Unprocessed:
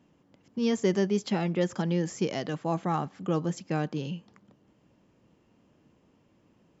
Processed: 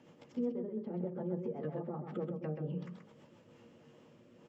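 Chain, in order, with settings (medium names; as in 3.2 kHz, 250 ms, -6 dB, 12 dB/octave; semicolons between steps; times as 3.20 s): sawtooth pitch modulation +1 st, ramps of 410 ms; low-pass that closes with the level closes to 610 Hz, closed at -28.5 dBFS; tone controls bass -13 dB, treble -3 dB; compression 8:1, threshold -47 dBFS, peak gain reduction 20.5 dB; time stretch by phase-locked vocoder 0.66×; rotary cabinet horn 8 Hz, later 1.2 Hz, at 3.06 s; delay 130 ms -6 dB; on a send at -9 dB: reverberation RT60 0.30 s, pre-delay 3 ms; on the sum: trim +10.5 dB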